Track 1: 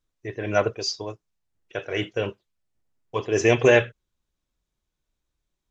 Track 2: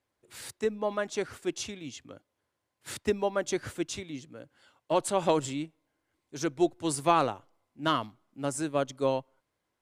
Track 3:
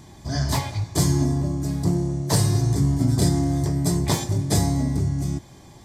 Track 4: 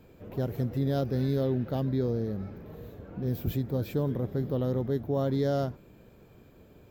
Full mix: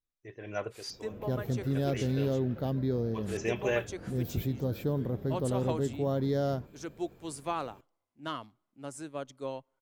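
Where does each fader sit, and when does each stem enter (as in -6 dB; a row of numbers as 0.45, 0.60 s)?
-14.0 dB, -10.0 dB, off, -2.0 dB; 0.00 s, 0.40 s, off, 0.90 s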